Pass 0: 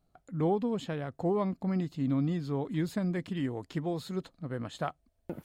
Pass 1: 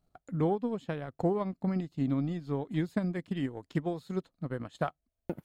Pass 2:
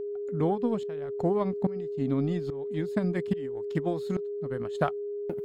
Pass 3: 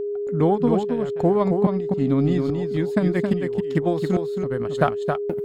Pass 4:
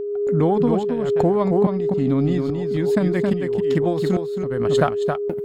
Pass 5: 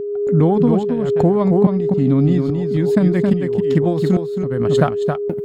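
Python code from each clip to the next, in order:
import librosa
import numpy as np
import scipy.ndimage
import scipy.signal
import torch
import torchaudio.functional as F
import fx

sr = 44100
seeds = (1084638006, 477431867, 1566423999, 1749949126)

y1 = fx.transient(x, sr, attack_db=6, sustain_db=-10)
y1 = F.gain(torch.from_numpy(y1), -2.0).numpy()
y2 = fx.tremolo_shape(y1, sr, shape='saw_up', hz=1.2, depth_pct=95)
y2 = y2 + 10.0 ** (-38.0 / 20.0) * np.sin(2.0 * np.pi * 410.0 * np.arange(len(y2)) / sr)
y2 = F.gain(torch.from_numpy(y2), 6.5).numpy()
y3 = y2 + 10.0 ** (-5.5 / 20.0) * np.pad(y2, (int(270 * sr / 1000.0), 0))[:len(y2)]
y3 = F.gain(torch.from_numpy(y3), 7.5).numpy()
y4 = fx.pre_swell(y3, sr, db_per_s=31.0)
y5 = fx.peak_eq(y4, sr, hz=150.0, db=6.5, octaves=2.2)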